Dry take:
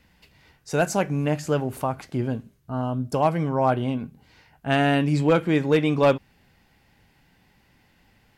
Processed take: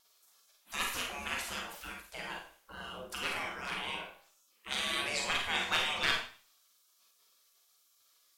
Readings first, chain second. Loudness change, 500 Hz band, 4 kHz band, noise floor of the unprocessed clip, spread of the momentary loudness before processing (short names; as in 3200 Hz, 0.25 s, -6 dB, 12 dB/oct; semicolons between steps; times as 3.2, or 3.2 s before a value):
-11.0 dB, -22.5 dB, +3.0 dB, -62 dBFS, 10 LU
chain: spectral gate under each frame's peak -25 dB weak; vibrato 1.3 Hz 10 cents; Schroeder reverb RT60 0.42 s, combs from 33 ms, DRR 0.5 dB; gain +3.5 dB